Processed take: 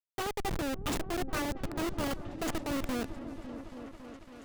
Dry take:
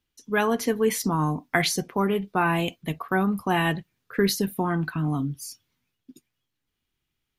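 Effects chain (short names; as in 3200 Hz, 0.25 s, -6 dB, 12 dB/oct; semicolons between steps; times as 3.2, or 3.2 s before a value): speed glide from 182% -> 150%; Schmitt trigger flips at -21.5 dBFS; repeats that get brighter 0.277 s, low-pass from 200 Hz, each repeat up 1 oct, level -6 dB; gain -5 dB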